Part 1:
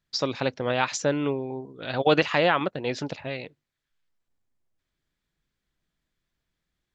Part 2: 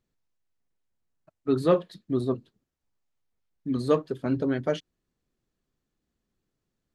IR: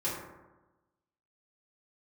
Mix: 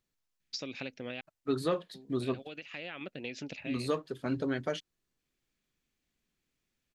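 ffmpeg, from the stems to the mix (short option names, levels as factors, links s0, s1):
-filter_complex "[0:a]equalizer=f=100:t=o:w=0.67:g=-3,equalizer=f=250:t=o:w=0.67:g=6,equalizer=f=1000:t=o:w=0.67:g=-10,equalizer=f=2500:t=o:w=0.67:g=11,equalizer=f=6300:t=o:w=0.67:g=6,acompressor=threshold=0.0447:ratio=16,adelay=400,volume=0.376,asplit=3[s0][s1][s2];[s0]atrim=end=1.21,asetpts=PTS-STARTPTS,afade=t=out:st=1.206:d=0.004:c=hsin[s3];[s1]atrim=start=1.21:end=1.94,asetpts=PTS-STARTPTS,volume=0[s4];[s2]atrim=start=1.94,asetpts=PTS-STARTPTS,afade=t=in:d=0.004:c=hsin[s5];[s3][s4][s5]concat=n=3:v=0:a=1[s6];[1:a]tiltshelf=f=1100:g=-4.5,volume=0.75,asplit=2[s7][s8];[s8]apad=whole_len=323843[s9];[s6][s9]sidechaincompress=threshold=0.02:ratio=8:attack=32:release=1040[s10];[s10][s7]amix=inputs=2:normalize=0,alimiter=limit=0.106:level=0:latency=1:release=304"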